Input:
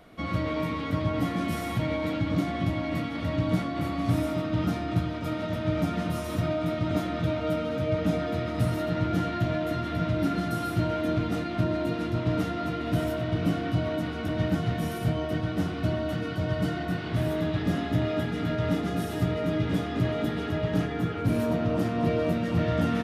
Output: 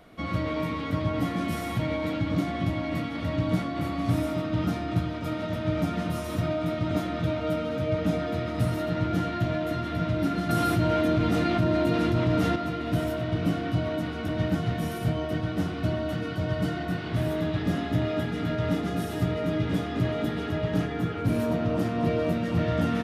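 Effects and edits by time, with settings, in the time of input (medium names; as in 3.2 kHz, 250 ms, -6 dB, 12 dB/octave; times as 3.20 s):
10.49–12.56 s: level flattener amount 70%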